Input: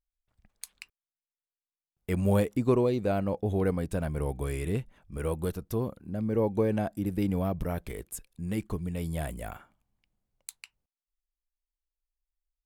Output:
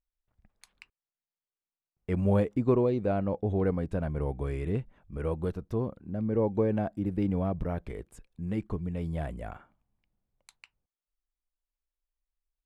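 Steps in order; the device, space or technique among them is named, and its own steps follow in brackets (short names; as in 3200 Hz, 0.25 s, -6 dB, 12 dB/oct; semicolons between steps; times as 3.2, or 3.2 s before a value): through cloth (LPF 9200 Hz 12 dB/oct; high shelf 3600 Hz -16.5 dB)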